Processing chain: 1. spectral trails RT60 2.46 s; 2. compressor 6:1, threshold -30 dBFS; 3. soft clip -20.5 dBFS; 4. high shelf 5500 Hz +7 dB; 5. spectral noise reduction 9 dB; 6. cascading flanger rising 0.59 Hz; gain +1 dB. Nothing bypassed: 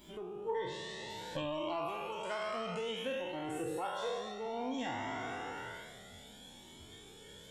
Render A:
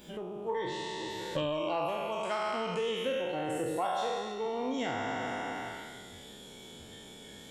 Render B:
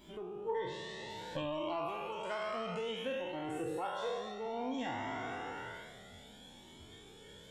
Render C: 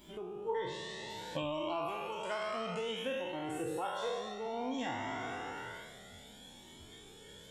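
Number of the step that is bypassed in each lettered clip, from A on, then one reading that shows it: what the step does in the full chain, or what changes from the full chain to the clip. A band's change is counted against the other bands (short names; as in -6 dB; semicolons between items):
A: 6, loudness change +5.0 LU; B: 4, 8 kHz band -4.5 dB; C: 3, distortion -26 dB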